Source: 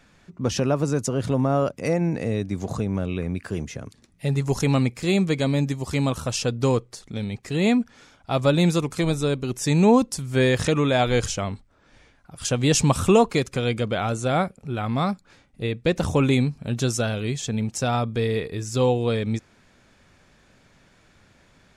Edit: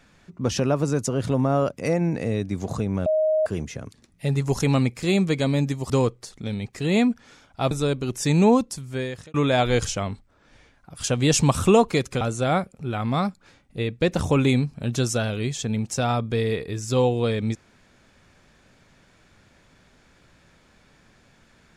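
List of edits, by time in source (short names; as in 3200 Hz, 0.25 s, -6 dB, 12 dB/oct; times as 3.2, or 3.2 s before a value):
3.06–3.46 bleep 625 Hz -17.5 dBFS
5.9–6.6 cut
8.41–9.12 cut
9.82–10.75 fade out
13.62–14.05 cut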